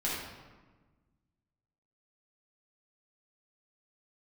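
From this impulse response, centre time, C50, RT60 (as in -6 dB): 78 ms, -1.0 dB, 1.3 s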